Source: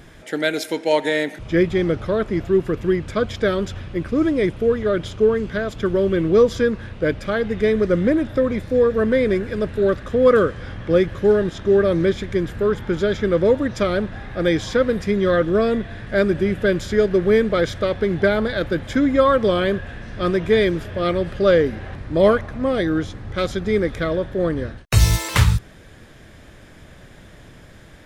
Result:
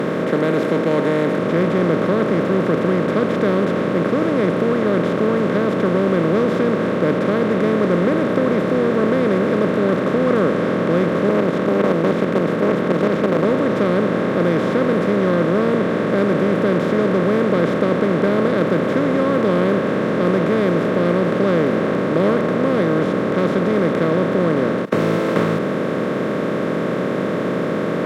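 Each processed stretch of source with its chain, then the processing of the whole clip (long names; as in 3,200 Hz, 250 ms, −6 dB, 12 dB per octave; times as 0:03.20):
0:11.29–0:13.45: mains-hum notches 60/120 Hz + output level in coarse steps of 9 dB + highs frequency-modulated by the lows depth 0.93 ms
whole clip: compressor on every frequency bin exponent 0.2; Chebyshev high-pass filter 170 Hz, order 4; bass and treble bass +13 dB, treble −13 dB; level −11 dB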